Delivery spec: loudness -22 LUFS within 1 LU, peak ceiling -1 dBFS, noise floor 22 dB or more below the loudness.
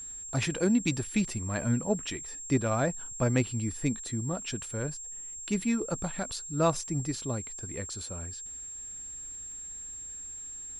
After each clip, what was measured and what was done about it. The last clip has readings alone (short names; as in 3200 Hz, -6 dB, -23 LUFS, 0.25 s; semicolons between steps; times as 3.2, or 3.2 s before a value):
ticks 24/s; steady tone 7500 Hz; tone level -39 dBFS; loudness -32.0 LUFS; peak -12.5 dBFS; loudness target -22.0 LUFS
-> de-click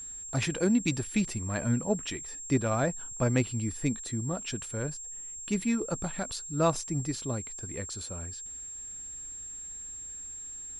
ticks 0.093/s; steady tone 7500 Hz; tone level -39 dBFS
-> notch 7500 Hz, Q 30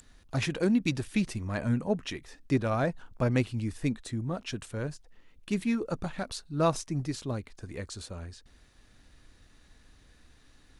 steady tone none; loudness -31.5 LUFS; peak -13.0 dBFS; loudness target -22.0 LUFS
-> gain +9.5 dB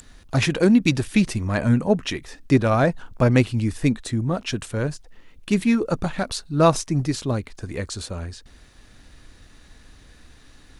loudness -22.0 LUFS; peak -3.5 dBFS; noise floor -51 dBFS